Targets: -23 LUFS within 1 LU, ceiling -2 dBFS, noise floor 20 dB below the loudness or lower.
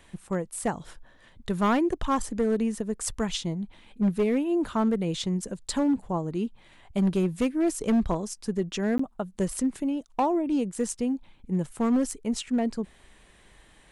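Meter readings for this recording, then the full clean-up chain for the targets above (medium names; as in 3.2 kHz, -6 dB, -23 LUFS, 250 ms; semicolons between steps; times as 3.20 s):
clipped samples 1.3%; clipping level -18.5 dBFS; dropouts 1; longest dropout 14 ms; loudness -28.0 LUFS; peak level -18.5 dBFS; loudness target -23.0 LUFS
-> clip repair -18.5 dBFS; interpolate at 8.98 s, 14 ms; trim +5 dB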